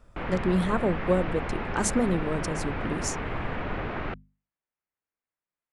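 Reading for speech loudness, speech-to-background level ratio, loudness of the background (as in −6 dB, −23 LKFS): −28.5 LKFS, 5.0 dB, −33.5 LKFS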